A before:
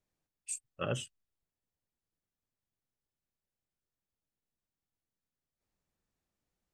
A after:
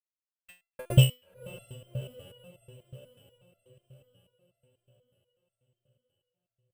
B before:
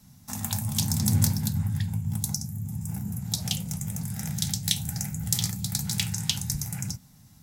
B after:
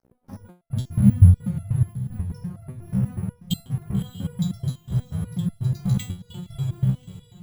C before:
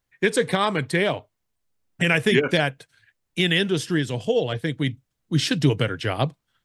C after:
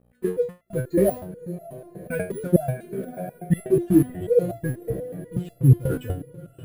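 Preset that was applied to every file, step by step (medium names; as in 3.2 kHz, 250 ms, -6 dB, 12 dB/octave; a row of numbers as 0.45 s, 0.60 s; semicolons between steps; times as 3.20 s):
spectral contrast enhancement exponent 2.4; low-pass that closes with the level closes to 850 Hz, closed at -21.5 dBFS; dynamic bell 420 Hz, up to -7 dB, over -38 dBFS, Q 4.8; level rider gain up to 8.5 dB; trance gate "xxxxx..x.xxxx." 150 bpm -60 dB; hum 60 Hz, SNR 23 dB; crossover distortion -40.5 dBFS; echo that smears into a reverb 595 ms, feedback 54%, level -14 dB; careless resampling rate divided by 4×, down filtered, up hold; resonator arpeggio 8.2 Hz 65–680 Hz; normalise loudness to -24 LUFS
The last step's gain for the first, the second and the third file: +21.0 dB, +11.5 dB, +8.5 dB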